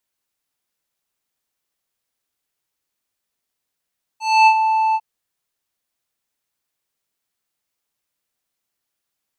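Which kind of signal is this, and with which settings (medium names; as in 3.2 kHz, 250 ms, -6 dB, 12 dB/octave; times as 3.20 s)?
synth note square A5 12 dB/octave, low-pass 1.7 kHz, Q 1.3, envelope 2 oct, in 0.41 s, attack 266 ms, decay 0.07 s, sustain -8 dB, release 0.05 s, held 0.75 s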